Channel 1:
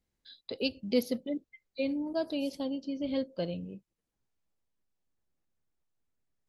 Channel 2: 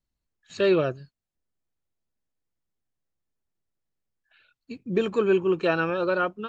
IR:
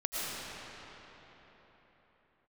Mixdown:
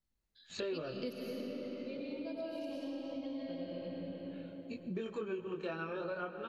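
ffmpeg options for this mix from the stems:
-filter_complex "[0:a]adelay=100,volume=-5.5dB,asplit=2[link_01][link_02];[link_02]volume=-5dB[link_03];[1:a]acontrast=61,flanger=delay=19.5:depth=6:speed=0.44,volume=-8.5dB,asplit=3[link_04][link_05][link_06];[link_05]volume=-16dB[link_07];[link_06]apad=whole_len=290586[link_08];[link_01][link_08]sidechaingate=range=-33dB:threshold=-53dB:ratio=16:detection=peak[link_09];[2:a]atrim=start_sample=2205[link_10];[link_03][link_07]amix=inputs=2:normalize=0[link_11];[link_11][link_10]afir=irnorm=-1:irlink=0[link_12];[link_09][link_04][link_12]amix=inputs=3:normalize=0,acompressor=threshold=-39dB:ratio=4"

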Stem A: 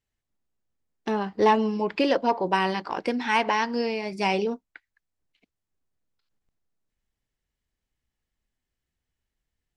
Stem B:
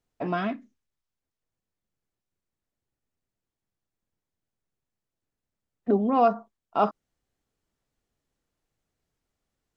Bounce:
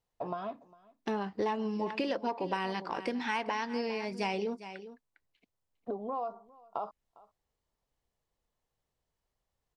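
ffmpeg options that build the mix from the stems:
ffmpeg -i stem1.wav -i stem2.wav -filter_complex "[0:a]volume=-4.5dB,asplit=2[link_01][link_02];[link_02]volume=-16.5dB[link_03];[1:a]equalizer=frequency=125:width_type=o:width=1:gain=5,equalizer=frequency=250:width_type=o:width=1:gain=-7,equalizer=frequency=500:width_type=o:width=1:gain=7,equalizer=frequency=1000:width_type=o:width=1:gain=12,equalizer=frequency=2000:width_type=o:width=1:gain=-12,equalizer=frequency=4000:width_type=o:width=1:gain=6,acompressor=threshold=-23dB:ratio=10,volume=-9.5dB,asplit=2[link_04][link_05];[link_05]volume=-23.5dB[link_06];[link_03][link_06]amix=inputs=2:normalize=0,aecho=0:1:404:1[link_07];[link_01][link_04][link_07]amix=inputs=3:normalize=0,acompressor=threshold=-29dB:ratio=6" out.wav

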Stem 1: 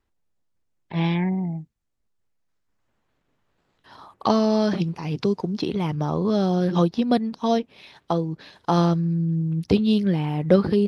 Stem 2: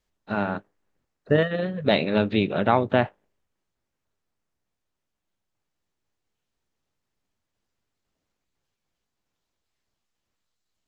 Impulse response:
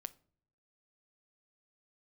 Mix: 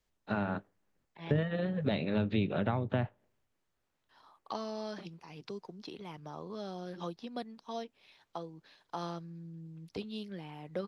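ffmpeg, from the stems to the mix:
-filter_complex "[0:a]lowshelf=frequency=320:gain=-12,adelay=250,volume=-14.5dB[link_01];[1:a]volume=-3dB,asplit=2[link_02][link_03];[link_03]volume=-20dB[link_04];[2:a]atrim=start_sample=2205[link_05];[link_04][link_05]afir=irnorm=-1:irlink=0[link_06];[link_01][link_02][link_06]amix=inputs=3:normalize=0,acrossover=split=180[link_07][link_08];[link_08]acompressor=threshold=-31dB:ratio=8[link_09];[link_07][link_09]amix=inputs=2:normalize=0"

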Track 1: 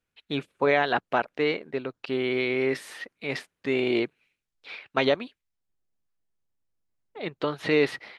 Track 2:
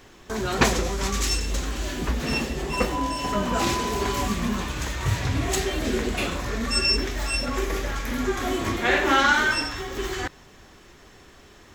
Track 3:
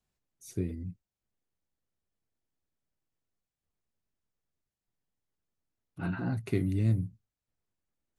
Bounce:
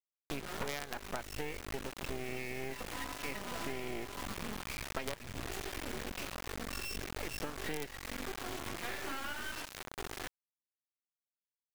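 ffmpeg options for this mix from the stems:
ffmpeg -i stem1.wav -i stem2.wav -i stem3.wav -filter_complex "[0:a]highpass=frequency=62:poles=1,volume=0.5dB[link_01];[1:a]volume=-9.5dB[link_02];[2:a]acompressor=threshold=-30dB:ratio=6,adelay=450,volume=-14dB[link_03];[link_01][link_02][link_03]amix=inputs=3:normalize=0,highshelf=frequency=3300:width_type=q:width=1.5:gain=-6.5,acrusher=bits=3:dc=4:mix=0:aa=0.000001,acompressor=threshold=-35dB:ratio=8" out.wav

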